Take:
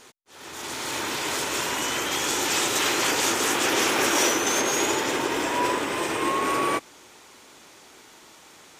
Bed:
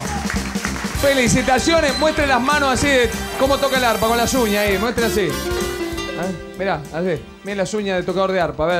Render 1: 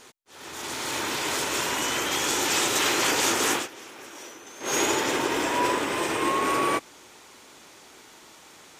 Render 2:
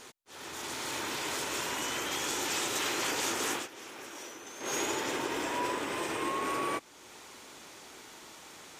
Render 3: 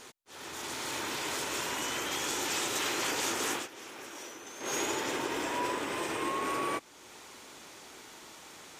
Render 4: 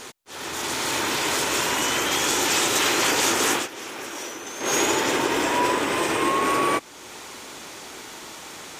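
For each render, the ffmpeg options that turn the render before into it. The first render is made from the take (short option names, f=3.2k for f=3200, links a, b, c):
-filter_complex "[0:a]asplit=3[a][b][c];[a]atrim=end=3.68,asetpts=PTS-STARTPTS,afade=t=out:st=3.53:d=0.15:silence=0.0891251[d];[b]atrim=start=3.68:end=4.6,asetpts=PTS-STARTPTS,volume=-21dB[e];[c]atrim=start=4.6,asetpts=PTS-STARTPTS,afade=t=in:d=0.15:silence=0.0891251[f];[d][e][f]concat=n=3:v=0:a=1"
-af "acompressor=threshold=-45dB:ratio=1.5"
-af anull
-af "volume=11dB"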